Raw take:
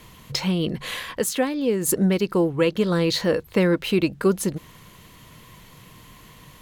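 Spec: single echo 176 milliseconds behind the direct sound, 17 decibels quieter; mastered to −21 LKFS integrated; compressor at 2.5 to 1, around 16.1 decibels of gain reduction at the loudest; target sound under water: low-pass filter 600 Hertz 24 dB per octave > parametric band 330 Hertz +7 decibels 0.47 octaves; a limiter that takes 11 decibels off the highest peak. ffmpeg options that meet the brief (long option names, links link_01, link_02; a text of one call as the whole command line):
ffmpeg -i in.wav -af "acompressor=threshold=-41dB:ratio=2.5,alimiter=level_in=9dB:limit=-24dB:level=0:latency=1,volume=-9dB,lowpass=frequency=600:width=0.5412,lowpass=frequency=600:width=1.3066,equalizer=frequency=330:width_type=o:width=0.47:gain=7,aecho=1:1:176:0.141,volume=20.5dB" out.wav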